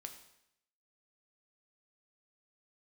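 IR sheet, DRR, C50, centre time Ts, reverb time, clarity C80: 4.5 dB, 9.5 dB, 16 ms, 0.75 s, 11.5 dB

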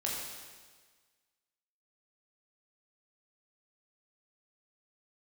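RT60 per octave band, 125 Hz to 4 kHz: 1.5, 1.5, 1.5, 1.5, 1.5, 1.5 s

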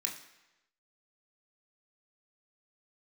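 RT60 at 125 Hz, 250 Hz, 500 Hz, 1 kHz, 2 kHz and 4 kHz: 0.95, 0.90, 1.0, 1.0, 1.0, 0.95 s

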